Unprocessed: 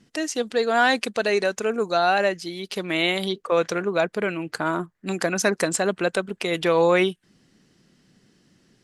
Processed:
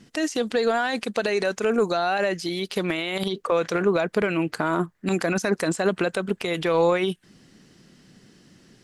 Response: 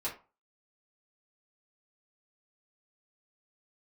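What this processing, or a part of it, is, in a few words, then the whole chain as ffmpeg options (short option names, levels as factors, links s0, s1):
de-esser from a sidechain: -filter_complex "[0:a]asplit=2[s0][s1];[s1]highpass=f=4700:p=1,apad=whole_len=389588[s2];[s0][s2]sidechaincompress=threshold=0.0112:ratio=6:attack=2.4:release=46,volume=2.11"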